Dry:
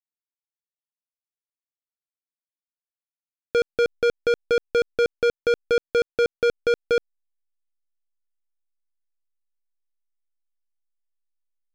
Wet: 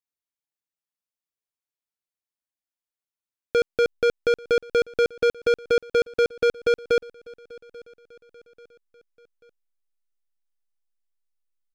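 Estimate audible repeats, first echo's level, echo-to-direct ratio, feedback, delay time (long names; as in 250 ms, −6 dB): 2, −23.0 dB, −22.0 dB, 48%, 838 ms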